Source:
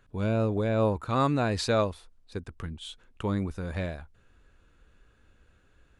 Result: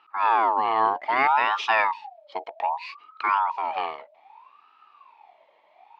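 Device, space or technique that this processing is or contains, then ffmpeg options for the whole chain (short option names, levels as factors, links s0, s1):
voice changer toy: -filter_complex "[0:a]asettb=1/sr,asplit=3[s0][s1][s2];[s0]atrim=end=1.844[s3];[s1]atrim=start=1.84:end=3.35,asetpts=PTS-STARTPTS,afade=t=in:d=0.004:c=qsin,afade=t=out:st=1.506:d=0.004:c=qsin,aecho=1:1:1.1:0.66,atrim=end_sample=66591[s4];[s2]atrim=start=3.346[s5];[s3][s4]acrossfade=d=0.004:c1=hsin:c2=qsin[s6];[s6][s5]acrossfade=d=0.004:c1=qsin:c2=hsin,aeval=exprs='val(0)*sin(2*PI*920*n/s+920*0.4/0.63*sin(2*PI*0.63*n/s))':c=same,highpass=500,equalizer=f=520:t=q:w=4:g=-9,equalizer=f=890:t=q:w=4:g=9,equalizer=f=1500:t=q:w=4:g=-6,equalizer=f=2500:t=q:w=4:g=4,lowpass=f=4000:w=0.5412,lowpass=f=4000:w=1.3066,volume=2.11"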